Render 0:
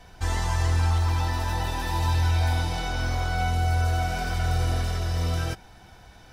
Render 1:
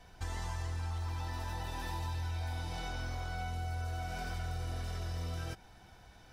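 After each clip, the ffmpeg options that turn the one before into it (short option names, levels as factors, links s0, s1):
-af "acompressor=threshold=0.0398:ratio=4,volume=0.422"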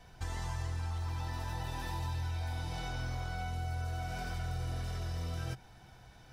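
-af "equalizer=f=130:t=o:w=0.34:g=8.5"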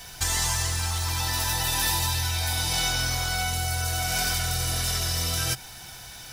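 -af "crystalizer=i=10:c=0,acrusher=bits=7:mode=log:mix=0:aa=0.000001,volume=2.11"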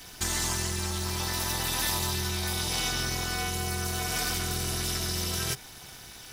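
-af "tremolo=f=280:d=0.889"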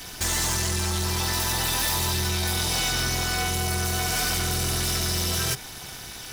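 -af "aeval=exprs='0.211*sin(PI/2*2.82*val(0)/0.211)':c=same,volume=0.531"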